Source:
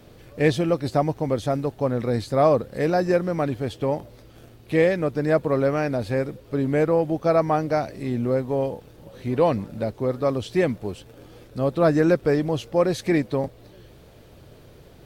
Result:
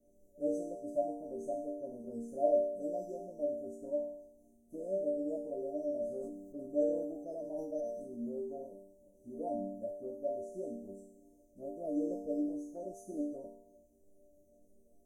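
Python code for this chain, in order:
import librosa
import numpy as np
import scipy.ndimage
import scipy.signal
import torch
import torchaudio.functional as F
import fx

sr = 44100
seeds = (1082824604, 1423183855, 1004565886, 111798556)

y = scipy.signal.sosfilt(scipy.signal.cheby1(5, 1.0, [710.0, 6100.0], 'bandstop', fs=sr, output='sos'), x)
y = y + 0.59 * np.pad(y, (int(3.3 * sr / 1000.0), 0))[:len(y)]
y = fx.dynamic_eq(y, sr, hz=550.0, q=1.2, threshold_db=-30.0, ratio=4.0, max_db=5)
y = fx.resonator_bank(y, sr, root=55, chord='minor', decay_s=0.79)
y = fx.sustainer(y, sr, db_per_s=44.0, at=(6.08, 8.41))
y = F.gain(torch.from_numpy(y), 3.5).numpy()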